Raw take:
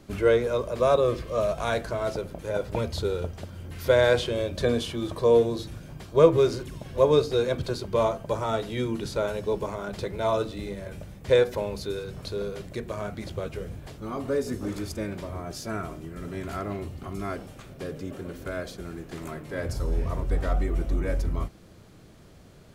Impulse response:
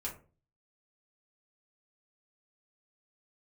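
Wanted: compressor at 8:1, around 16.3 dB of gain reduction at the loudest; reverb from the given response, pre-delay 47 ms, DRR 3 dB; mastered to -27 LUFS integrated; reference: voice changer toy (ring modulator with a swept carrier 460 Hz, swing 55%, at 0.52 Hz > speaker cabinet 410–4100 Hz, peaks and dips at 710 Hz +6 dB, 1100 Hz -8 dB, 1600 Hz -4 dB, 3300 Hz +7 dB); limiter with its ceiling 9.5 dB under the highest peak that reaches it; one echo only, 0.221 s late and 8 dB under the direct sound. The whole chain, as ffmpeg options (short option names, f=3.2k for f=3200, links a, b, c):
-filter_complex "[0:a]acompressor=threshold=-28dB:ratio=8,alimiter=level_in=2dB:limit=-24dB:level=0:latency=1,volume=-2dB,aecho=1:1:221:0.398,asplit=2[a][b];[1:a]atrim=start_sample=2205,adelay=47[c];[b][c]afir=irnorm=-1:irlink=0,volume=-3.5dB[d];[a][d]amix=inputs=2:normalize=0,aeval=exprs='val(0)*sin(2*PI*460*n/s+460*0.55/0.52*sin(2*PI*0.52*n/s))':c=same,highpass=410,equalizer=f=710:t=q:w=4:g=6,equalizer=f=1.1k:t=q:w=4:g=-8,equalizer=f=1.6k:t=q:w=4:g=-4,equalizer=f=3.3k:t=q:w=4:g=7,lowpass=f=4.1k:w=0.5412,lowpass=f=4.1k:w=1.3066,volume=11dB"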